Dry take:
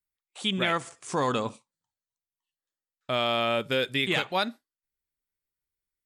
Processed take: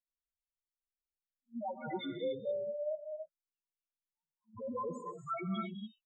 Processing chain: reverse the whole clip; loudest bins only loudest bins 1; gated-style reverb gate 310 ms rising, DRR 4.5 dB; trim -1.5 dB

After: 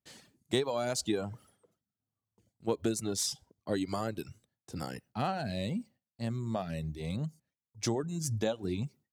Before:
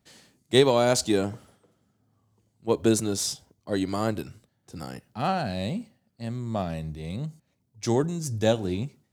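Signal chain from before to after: compression 4:1, threshold -28 dBFS, peak gain reduction 13 dB; reverb removal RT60 0.77 s; gate with hold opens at -60 dBFS

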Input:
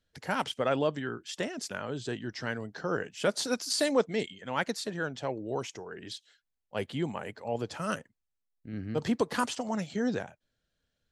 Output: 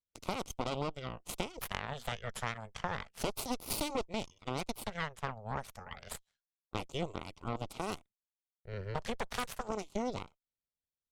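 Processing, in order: Chebyshev shaper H 3 -40 dB, 5 -24 dB, 7 -15 dB, 8 -12 dB, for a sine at -12.5 dBFS; compression 4:1, threshold -38 dBFS, peak gain reduction 16 dB; LFO notch square 0.31 Hz 310–1700 Hz; trim +5 dB

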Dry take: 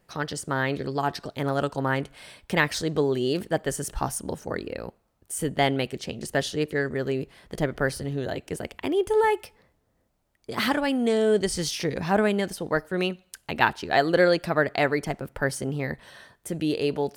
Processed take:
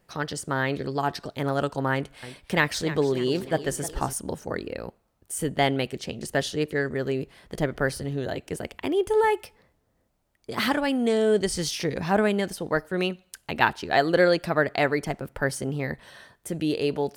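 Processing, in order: 1.93–4.13 s: modulated delay 301 ms, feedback 47%, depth 144 cents, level -14 dB

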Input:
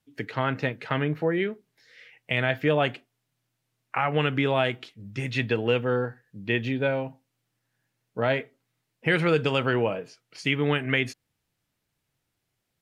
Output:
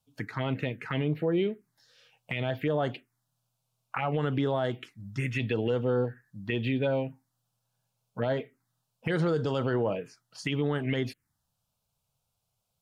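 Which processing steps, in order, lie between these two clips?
touch-sensitive phaser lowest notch 320 Hz, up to 2.5 kHz, full sweep at -19.5 dBFS; peak limiter -19.5 dBFS, peak gain reduction 9 dB; trim +1 dB

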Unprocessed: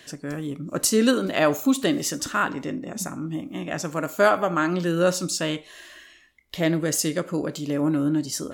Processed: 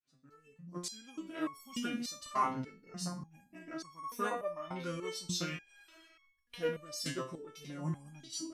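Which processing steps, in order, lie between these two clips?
fade-in on the opening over 1.93 s; formant shift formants -4 st; resonator arpeggio 3.4 Hz 130–1100 Hz; trim +2 dB

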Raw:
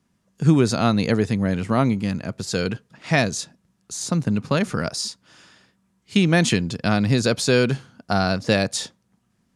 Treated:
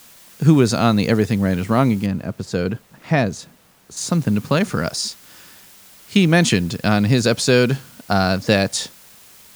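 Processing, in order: in parallel at -11 dB: word length cut 6-bit, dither triangular; 2.06–3.97 s: on the sum: treble shelf 2.1 kHz -11.5 dB; trim +1 dB

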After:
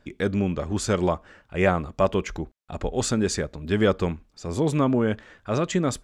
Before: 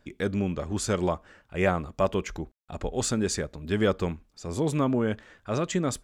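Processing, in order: treble shelf 10 kHz -9 dB; trim +3.5 dB

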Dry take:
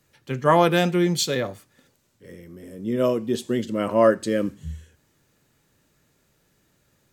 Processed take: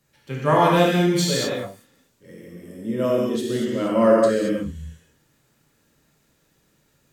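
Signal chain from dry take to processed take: gated-style reverb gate 250 ms flat, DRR -4 dB; trim -4 dB

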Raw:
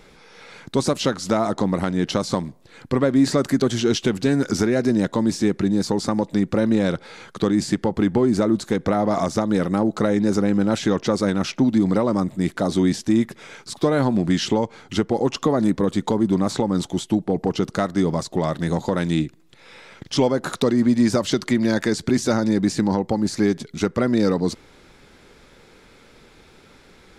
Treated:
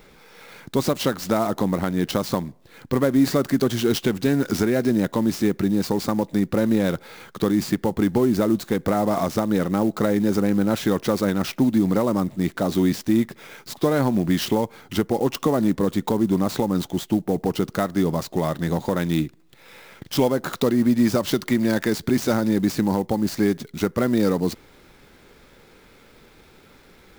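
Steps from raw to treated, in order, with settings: sampling jitter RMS 0.022 ms; trim -1 dB

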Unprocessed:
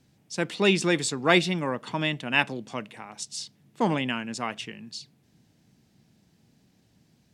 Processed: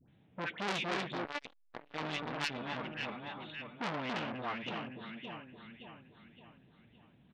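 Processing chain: in parallel at -2.5 dB: compression, threshold -34 dBFS, peak gain reduction 18.5 dB; 1.24–1.74 s: on the sum: robot voice 290 Hz; phase dispersion highs, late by 90 ms, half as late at 1.1 kHz; on a send: echo whose repeats swap between lows and highs 284 ms, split 1.4 kHz, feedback 65%, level -4 dB; on the sum: resampled via 8 kHz; transformer saturation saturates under 3.8 kHz; trim -7 dB

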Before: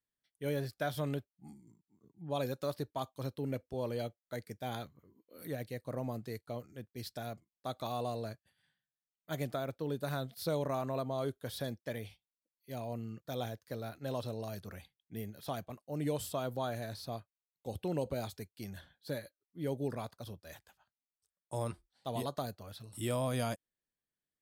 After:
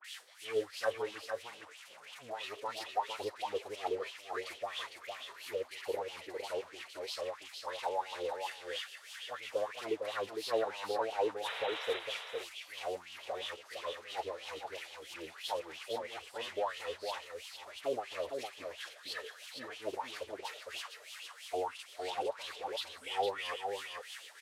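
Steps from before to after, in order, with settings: zero-crossing glitches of -28.5 dBFS; low-pass 11 kHz 12 dB/octave; peaking EQ 220 Hz -11 dB 1.1 oct; in parallel at 0 dB: peak limiter -33.5 dBFS, peak gain reduction 9.5 dB; on the sum: formant-preserving pitch shift -4.5 st; wah-wah 3 Hz 440–3100 Hz, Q 4.6; painted sound noise, 11.43–11.96 s, 410–4000 Hz -49 dBFS; phase dispersion highs, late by 45 ms, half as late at 1.5 kHz; on a send: delay 457 ms -5.5 dB; on the sum: trim +7.5 dB; Vorbis 96 kbps 44.1 kHz

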